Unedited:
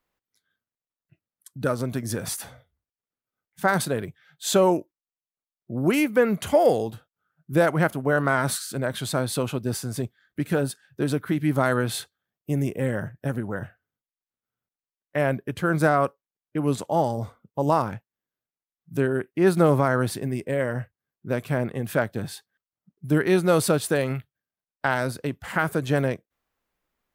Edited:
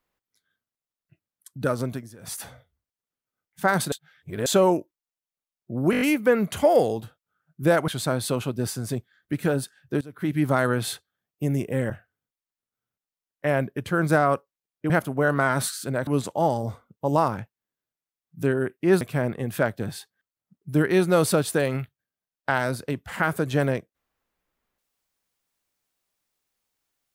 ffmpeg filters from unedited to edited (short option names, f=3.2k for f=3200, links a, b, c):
-filter_complex "[0:a]asplit=16[a][b][c][d][e][f][g][h][i][j][k][l][m][n][o][p];[a]atrim=end=2.1,asetpts=PTS-STARTPTS,afade=t=out:st=1.86:d=0.24:silence=0.11885[q];[b]atrim=start=2.1:end=2.18,asetpts=PTS-STARTPTS,volume=-18.5dB[r];[c]atrim=start=2.18:end=3.922,asetpts=PTS-STARTPTS,afade=t=in:d=0.24:silence=0.11885[s];[d]atrim=start=3.918:end=4.462,asetpts=PTS-STARTPTS,areverse[t];[e]atrim=start=4.458:end=5.932[u];[f]atrim=start=5.908:end=5.932[v];[g]atrim=start=5.908:end=5.932[w];[h]atrim=start=5.908:end=5.932[x];[i]atrim=start=5.908:end=5.932[y];[j]atrim=start=5.908:end=7.782[z];[k]atrim=start=8.948:end=11.08,asetpts=PTS-STARTPTS,afade=t=out:st=2.128:d=0.004:c=hsin:silence=0.0891251[aa];[l]atrim=start=11.08:end=12.972,asetpts=PTS-STARTPTS,afade=t=in:d=0.28:c=qua:silence=0.0891251[ab];[m]atrim=start=13.608:end=16.612[ac];[n]atrim=start=7.778:end=8.952[ad];[o]atrim=start=16.608:end=19.552[ae];[p]atrim=start=21.368[af];[q][r][s]concat=n=3:v=0:a=1[ag];[ag][t]acrossfade=d=0.004:c1=hsin:c2=hsin[ah];[ah][u]acrossfade=d=0.004:c1=hsin:c2=hsin[ai];[ai][v]acrossfade=d=0.004:c1=hsin:c2=hsin[aj];[aj][w]acrossfade=d=0.004:c1=hsin:c2=hsin[ak];[ak][x]acrossfade=d=0.004:c1=hsin:c2=hsin[al];[al][y]acrossfade=d=0.004:c1=hsin:c2=hsin[am];[am][z]acrossfade=d=0.004:c1=hsin:c2=hsin[an];[aa][ab]concat=n=2:v=0:a=1[ao];[an][ao]acrossfade=d=0.004:c1=hsin:c2=hsin[ap];[ap][ac]acrossfade=d=0.004:c1=hsin:c2=hsin[aq];[aq][ad]acrossfade=d=0.004:c1=hsin:c2=hsin[ar];[ar][ae]acrossfade=d=0.004:c1=hsin:c2=hsin[as];[as][af]acrossfade=d=0.004:c1=hsin:c2=hsin"